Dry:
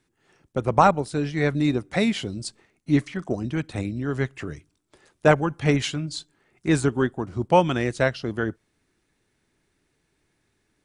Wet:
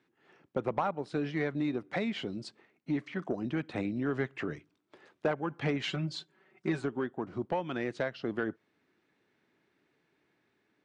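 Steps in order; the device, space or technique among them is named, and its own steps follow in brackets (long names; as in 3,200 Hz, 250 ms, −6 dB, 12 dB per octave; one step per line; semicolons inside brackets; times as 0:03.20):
AM radio (band-pass filter 190–3,200 Hz; downward compressor 5 to 1, threshold −26 dBFS, peak gain reduction 14 dB; soft clipping −18 dBFS, distortion −21 dB; amplitude tremolo 0.21 Hz, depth 26%)
0:05.87–0:06.82: comb filter 5.3 ms, depth 73%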